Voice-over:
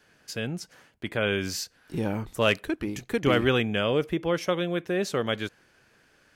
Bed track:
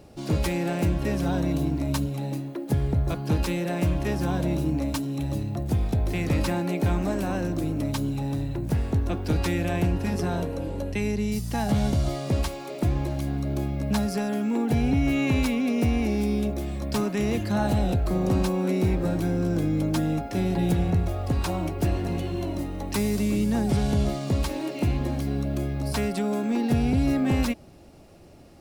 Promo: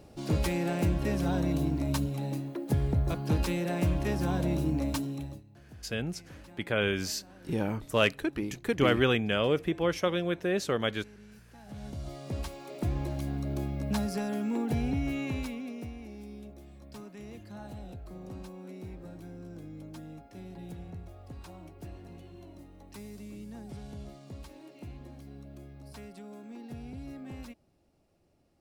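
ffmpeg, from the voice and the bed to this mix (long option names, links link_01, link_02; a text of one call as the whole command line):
ffmpeg -i stem1.wav -i stem2.wav -filter_complex "[0:a]adelay=5550,volume=-2dB[link_01];[1:a]volume=17dB,afade=type=out:start_time=5:duration=0.42:silence=0.0749894,afade=type=in:start_time=11.62:duration=1.47:silence=0.0944061,afade=type=out:start_time=14.54:duration=1.41:silence=0.188365[link_02];[link_01][link_02]amix=inputs=2:normalize=0" out.wav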